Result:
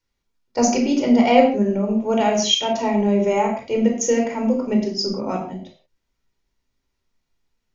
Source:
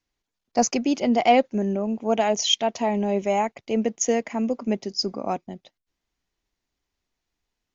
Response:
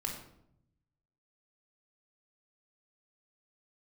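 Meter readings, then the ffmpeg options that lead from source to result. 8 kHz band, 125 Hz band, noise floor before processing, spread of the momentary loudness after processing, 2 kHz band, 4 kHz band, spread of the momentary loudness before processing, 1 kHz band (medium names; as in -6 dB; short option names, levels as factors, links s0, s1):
no reading, +5.5 dB, -84 dBFS, 10 LU, +3.0 dB, +3.0 dB, 8 LU, +2.0 dB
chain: -filter_complex "[1:a]atrim=start_sample=2205,afade=t=out:st=0.26:d=0.01,atrim=end_sample=11907,asetrate=48510,aresample=44100[s0];[0:a][s0]afir=irnorm=-1:irlink=0,volume=1.33"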